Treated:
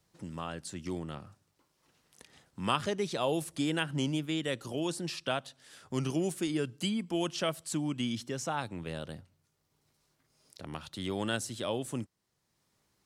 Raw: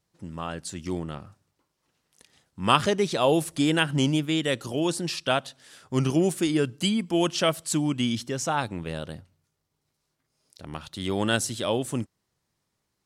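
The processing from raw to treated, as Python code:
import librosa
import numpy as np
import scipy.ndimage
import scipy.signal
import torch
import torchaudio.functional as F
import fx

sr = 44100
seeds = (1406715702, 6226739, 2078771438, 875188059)

y = fx.band_squash(x, sr, depth_pct=40)
y = y * librosa.db_to_amplitude(-8.0)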